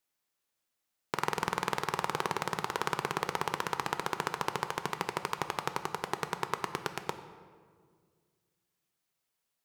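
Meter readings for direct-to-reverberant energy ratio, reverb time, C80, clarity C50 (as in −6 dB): 8.5 dB, 1.9 s, 12.0 dB, 10.5 dB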